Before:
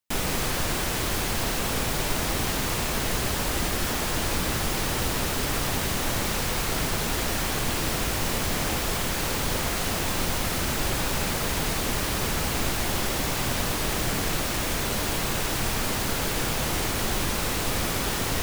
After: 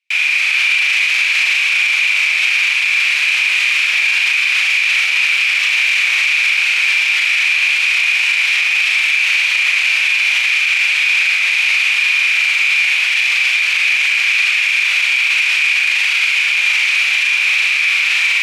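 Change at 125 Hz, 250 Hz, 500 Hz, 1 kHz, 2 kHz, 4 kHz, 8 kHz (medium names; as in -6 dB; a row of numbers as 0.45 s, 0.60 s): under -40 dB, under -25 dB, under -15 dB, -2.5 dB, +21.5 dB, +13.5 dB, +1.5 dB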